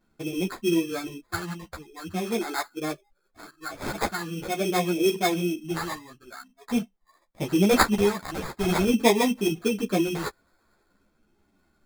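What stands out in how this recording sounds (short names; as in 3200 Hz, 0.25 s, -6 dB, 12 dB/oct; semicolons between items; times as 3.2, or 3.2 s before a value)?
phasing stages 2, 0.45 Hz, lowest notch 380–4400 Hz; aliases and images of a low sample rate 2900 Hz, jitter 0%; a shimmering, thickened sound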